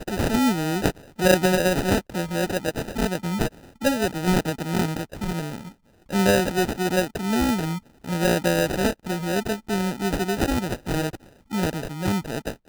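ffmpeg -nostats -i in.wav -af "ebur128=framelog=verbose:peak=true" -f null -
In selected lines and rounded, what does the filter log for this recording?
Integrated loudness:
  I:         -24.2 LUFS
  Threshold: -34.4 LUFS
Loudness range:
  LRA:         3.3 LU
  Threshold: -44.5 LUFS
  LRA low:   -26.3 LUFS
  LRA high:  -23.0 LUFS
True peak:
  Peak:       -3.6 dBFS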